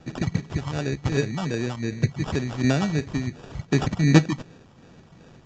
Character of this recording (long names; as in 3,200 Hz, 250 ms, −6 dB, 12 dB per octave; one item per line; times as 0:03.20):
phaser sweep stages 4, 2.7 Hz, lowest notch 420–2,800 Hz
aliases and images of a low sample rate 2,100 Hz, jitter 0%
Ogg Vorbis